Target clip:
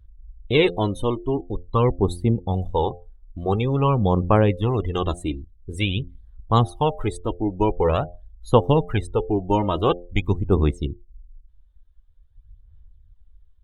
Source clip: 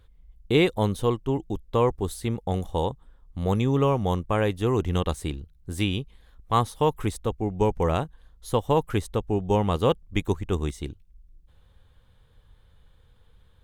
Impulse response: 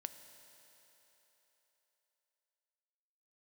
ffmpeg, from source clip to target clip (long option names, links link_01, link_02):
-af "aphaser=in_gain=1:out_gain=1:delay=3.3:decay=0.52:speed=0.47:type=sinusoidal,bandreject=frequency=87.81:width_type=h:width=4,bandreject=frequency=175.62:width_type=h:width=4,bandreject=frequency=263.43:width_type=h:width=4,bandreject=frequency=351.24:width_type=h:width=4,bandreject=frequency=439.05:width_type=h:width=4,bandreject=frequency=526.86:width_type=h:width=4,bandreject=frequency=614.67:width_type=h:width=4,bandreject=frequency=702.48:width_type=h:width=4,bandreject=frequency=790.29:width_type=h:width=4,afftdn=noise_reduction=23:noise_floor=-38,volume=2.5dB"